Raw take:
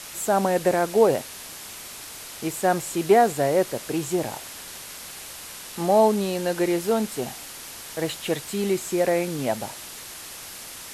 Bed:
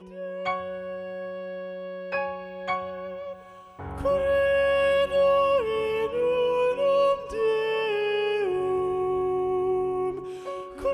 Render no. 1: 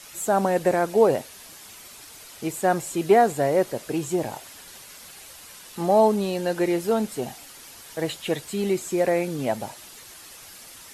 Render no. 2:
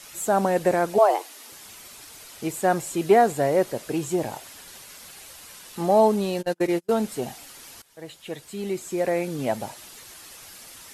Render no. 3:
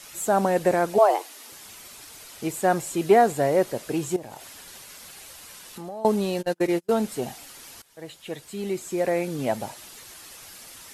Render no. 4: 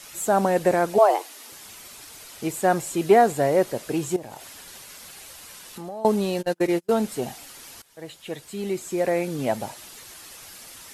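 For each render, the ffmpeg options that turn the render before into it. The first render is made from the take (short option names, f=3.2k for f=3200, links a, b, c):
-af "afftdn=nr=8:nf=-40"
-filter_complex "[0:a]asettb=1/sr,asplit=3[a][b][c];[a]atrim=end=0.984[d];[b]atrim=start=0.98:end=1.52,asetpts=PTS-STARTPTS,afade=t=in:d=0.004:c=qsin,afade=t=out:st=0.536:d=0.004:c=qsin,afreqshift=210[e];[c]atrim=start=1.516[f];[d][e]acrossfade=d=0.004:c1=hsin:c2=qsin[g];[g][f]acrossfade=d=0.004:c1=qsin:c2=hsin,asplit=3[h][i][j];[h]afade=t=out:st=6.41:d=0.02[k];[i]agate=range=-39dB:threshold=-25dB:ratio=16:release=100:detection=peak,afade=t=in:st=6.41:d=0.02,afade=t=out:st=6.89:d=0.02[l];[j]afade=t=in:st=6.89:d=0.02[m];[k][l][m]amix=inputs=3:normalize=0,asplit=2[n][o];[n]atrim=end=7.82,asetpts=PTS-STARTPTS,afade=t=out:st=7.816:d=0.004:c=hsin:silence=0.11885[p];[o]atrim=start=7.82,asetpts=PTS-STARTPTS,afade=t=in:d=1.71:silence=0.11885[q];[p][q]concat=n=2:v=0:a=1"
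-filter_complex "[0:a]asettb=1/sr,asplit=3[a][b][c];[a]atrim=end=4.164[d];[b]atrim=start=4.16:end=6.05,asetpts=PTS-STARTPTS,afade=t=in:d=0.004:c=qsin,afade=t=out:st=1.886:d=0.004:c=qsin,acompressor=threshold=-36dB:ratio=4:attack=3.2:release=140:knee=1:detection=peak[e];[c]atrim=start=6.046[f];[d][e]acrossfade=d=0.004:c1=hsin:c2=qsin[g];[g][f]acrossfade=d=0.004:c1=qsin:c2=hsin"
-af "volume=1dB"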